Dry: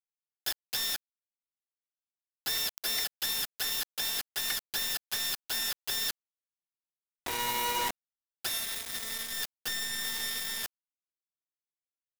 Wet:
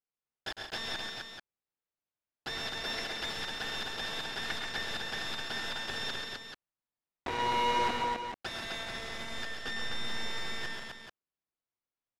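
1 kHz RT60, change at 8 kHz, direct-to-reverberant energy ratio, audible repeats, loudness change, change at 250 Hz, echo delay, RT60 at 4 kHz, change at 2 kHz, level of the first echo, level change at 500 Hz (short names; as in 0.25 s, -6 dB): none, -13.5 dB, none, 5, -3.5 dB, +6.0 dB, 0.105 s, none, +1.5 dB, -10.0 dB, +6.0 dB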